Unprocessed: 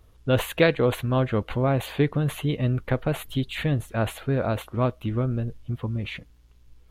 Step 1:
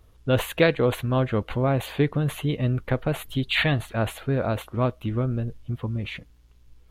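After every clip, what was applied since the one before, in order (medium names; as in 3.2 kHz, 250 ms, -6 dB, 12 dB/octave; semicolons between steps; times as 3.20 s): time-frequency box 3.50–3.93 s, 620–4700 Hz +10 dB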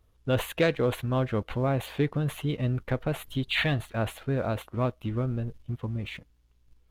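waveshaping leveller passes 1; trim -7.5 dB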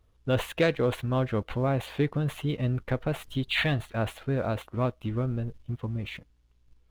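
median filter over 3 samples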